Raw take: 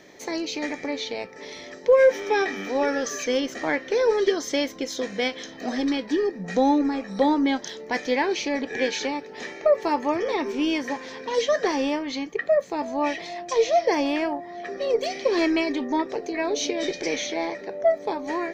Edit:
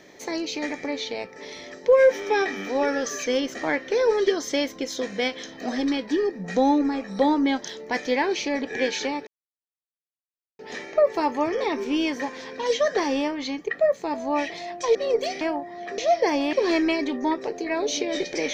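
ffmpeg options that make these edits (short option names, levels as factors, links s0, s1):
-filter_complex "[0:a]asplit=6[s0][s1][s2][s3][s4][s5];[s0]atrim=end=9.27,asetpts=PTS-STARTPTS,afade=t=out:st=9.266:d=0.004:c=hsin,apad=pad_dur=1.32[s6];[s1]atrim=start=9.27:end=13.632,asetpts=PTS-STARTPTS,afade=t=in:d=0.004:c=hsin[s7];[s2]atrim=start=14.748:end=15.212[s8];[s3]atrim=start=14.178:end=14.752[s9];[s4]atrim=start=13.628:end=14.182[s10];[s5]atrim=start=15.208[s11];[s6][s7]concat=n=2:v=0:a=1[s12];[s12][s8]acrossfade=d=0.004:c1=hsin:c2=hsin[s13];[s13][s9]acrossfade=d=0.004:c1=hsin:c2=hsin[s14];[s14][s10]acrossfade=d=0.004:c1=hsin:c2=hsin[s15];[s15][s11]acrossfade=d=0.004:c1=hsin:c2=hsin"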